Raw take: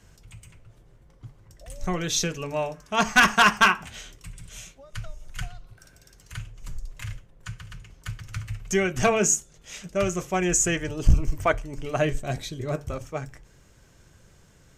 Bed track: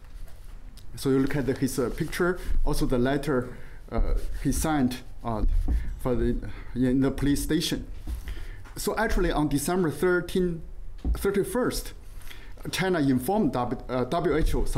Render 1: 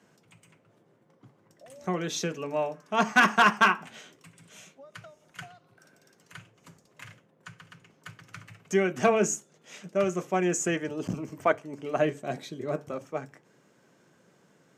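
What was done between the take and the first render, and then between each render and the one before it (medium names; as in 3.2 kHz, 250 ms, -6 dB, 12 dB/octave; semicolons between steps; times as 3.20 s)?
high-pass 180 Hz 24 dB/octave; treble shelf 2.4 kHz -10.5 dB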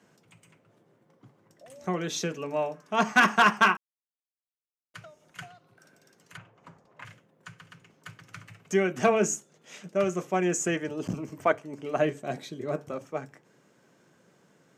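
3.77–4.94 s: mute; 6.37–7.05 s: FFT filter 360 Hz 0 dB, 900 Hz +8 dB, 11 kHz -17 dB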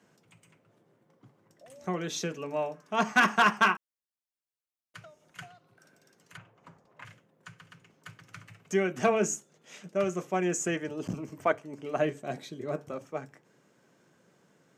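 trim -2.5 dB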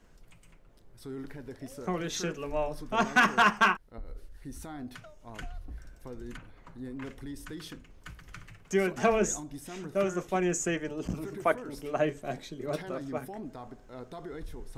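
add bed track -17 dB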